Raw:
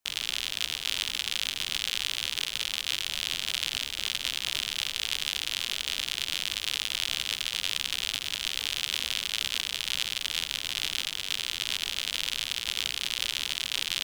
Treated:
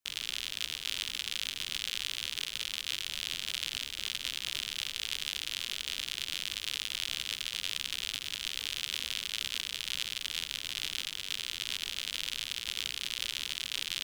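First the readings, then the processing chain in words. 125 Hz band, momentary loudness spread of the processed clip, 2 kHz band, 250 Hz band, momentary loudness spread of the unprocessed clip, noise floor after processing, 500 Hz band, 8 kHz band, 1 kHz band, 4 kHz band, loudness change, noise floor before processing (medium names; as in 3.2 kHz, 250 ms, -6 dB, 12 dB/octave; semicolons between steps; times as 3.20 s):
-5.0 dB, 1 LU, -5.5 dB, -5.5 dB, 1 LU, -44 dBFS, -7.5 dB, -5.0 dB, -7.5 dB, -5.0 dB, -5.0 dB, -39 dBFS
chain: peaking EQ 770 Hz -5.5 dB 0.9 oct; trim -5 dB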